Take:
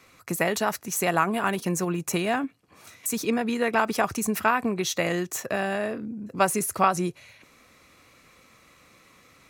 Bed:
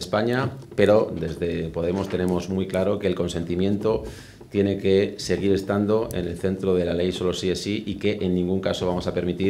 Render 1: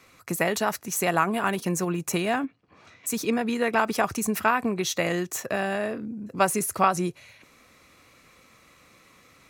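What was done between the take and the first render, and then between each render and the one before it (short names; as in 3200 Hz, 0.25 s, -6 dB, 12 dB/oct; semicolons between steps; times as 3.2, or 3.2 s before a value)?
2.45–3.07 air absorption 170 m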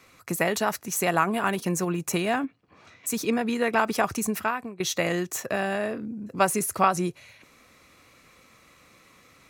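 4.21–4.8 fade out, to -19.5 dB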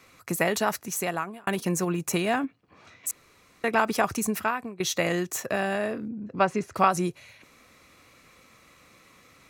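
0.79–1.47 fade out linear; 3.11–3.64 room tone; 6.08–6.76 air absorption 180 m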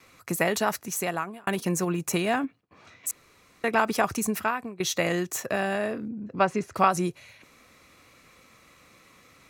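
gate with hold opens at -52 dBFS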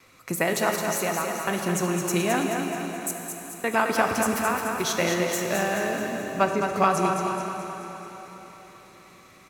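feedback echo 0.215 s, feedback 54%, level -6 dB; plate-style reverb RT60 4.3 s, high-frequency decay 0.9×, DRR 4 dB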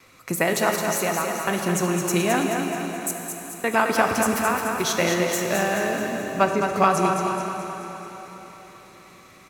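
gain +2.5 dB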